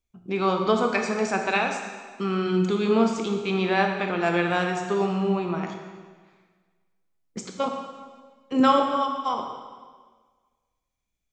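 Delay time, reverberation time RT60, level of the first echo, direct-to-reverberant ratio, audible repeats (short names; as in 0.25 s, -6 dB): none, 1.5 s, none, 3.0 dB, none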